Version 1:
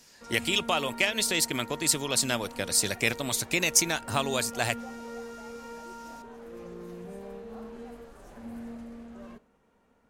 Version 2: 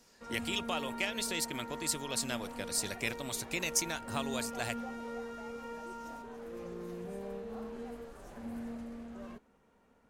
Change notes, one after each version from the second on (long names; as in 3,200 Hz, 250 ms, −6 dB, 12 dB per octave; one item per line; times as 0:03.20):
speech −9.0 dB
reverb: off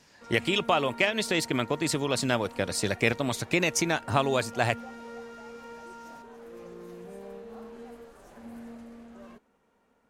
speech: remove first-order pre-emphasis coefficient 0.8
background: add low-shelf EQ 160 Hz −7 dB